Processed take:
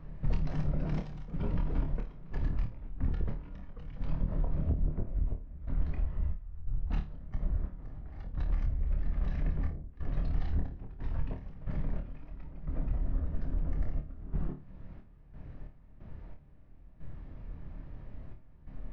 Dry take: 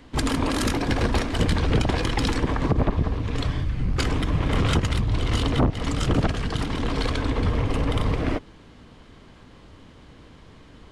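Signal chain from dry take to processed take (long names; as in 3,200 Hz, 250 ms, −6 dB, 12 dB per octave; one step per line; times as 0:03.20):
spectral tilt −3 dB per octave
downward compressor 12 to 1, threshold −20 dBFS, peak gain reduction 16.5 dB
gate pattern "xxx.xx.x.x..x" 78 BPM −12 dB
wrong playback speed 78 rpm record played at 45 rpm
on a send: flutter between parallel walls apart 4.6 metres, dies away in 0.27 s
on the sum: level −6.5 dB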